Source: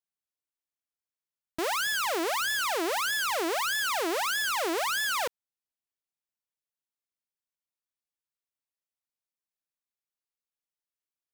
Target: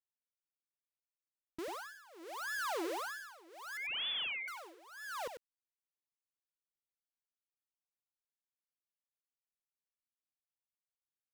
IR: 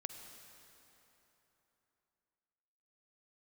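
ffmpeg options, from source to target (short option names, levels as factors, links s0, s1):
-filter_complex "[0:a]asoftclip=type=hard:threshold=0.0178,asettb=1/sr,asplit=3[s0][s1][s2];[s0]atrim=end=3.774[s3];[s1]atrim=start=3.77:end=4.48,asetpts=PTS-STARTPTS,afade=t=in:d=0.004:c=qsin,afade=t=out:st=0.706:d=0.004:c=qsin,lowpass=f=3200:t=q:w=0.5098,lowpass=f=3200:t=q:w=0.6013,lowpass=f=3200:t=q:w=0.9,lowpass=f=3200:t=q:w=2.563,afreqshift=-3800[s4];[s2]atrim=start=4.476[s5];[s3][s4]acrossfade=d=0.004:c1=hsin:c2=qsin[s6];[s6][s5]acrossfade=d=0.004:c1=qsin:c2=hsin,anlmdn=0.00631,tremolo=f=0.73:d=0.94,asplit=2[s7][s8];[s8]aecho=0:1:95:0.398[s9];[s7][s9]amix=inputs=2:normalize=0,volume=0.841"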